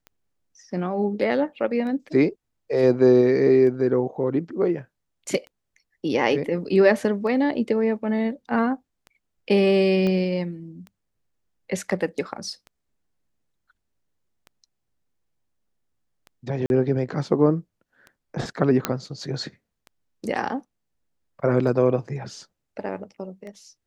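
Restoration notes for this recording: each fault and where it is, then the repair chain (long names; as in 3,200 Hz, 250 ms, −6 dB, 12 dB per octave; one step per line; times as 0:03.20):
scratch tick 33 1/3 rpm −27 dBFS
0:10.07: click −15 dBFS
0:16.66–0:16.70: drop-out 41 ms
0:18.85: click −5 dBFS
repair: click removal
repair the gap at 0:16.66, 41 ms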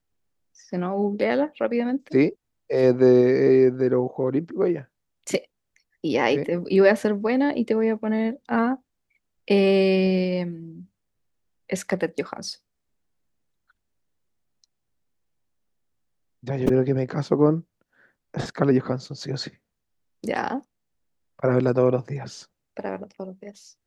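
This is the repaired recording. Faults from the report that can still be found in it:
0:10.07: click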